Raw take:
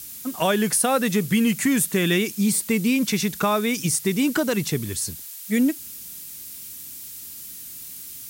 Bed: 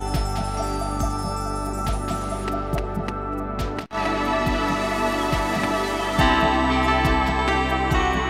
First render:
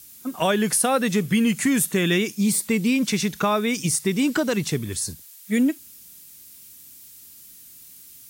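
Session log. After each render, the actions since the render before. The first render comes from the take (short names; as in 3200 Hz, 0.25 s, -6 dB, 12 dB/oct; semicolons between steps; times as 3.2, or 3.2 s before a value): noise print and reduce 8 dB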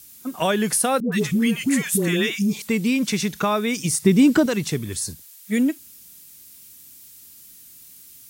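1–2.62 dispersion highs, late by 0.12 s, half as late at 710 Hz; 4.02–4.46 low shelf 470 Hz +10 dB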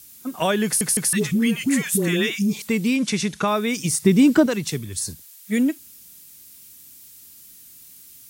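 0.65 stutter in place 0.16 s, 3 plays; 2.96–3.48 steep low-pass 11000 Hz 48 dB/oct; 4.35–4.99 three-band expander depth 70%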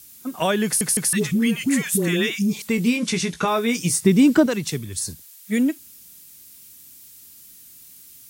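2.76–4.02 doubler 17 ms -6 dB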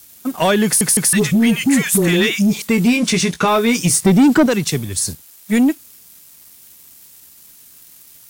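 sample leveller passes 2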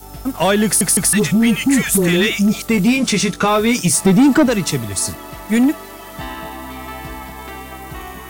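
add bed -11 dB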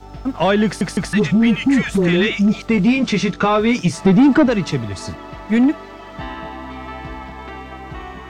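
air absorption 170 m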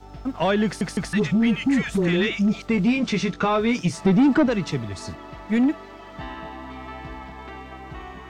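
gain -5.5 dB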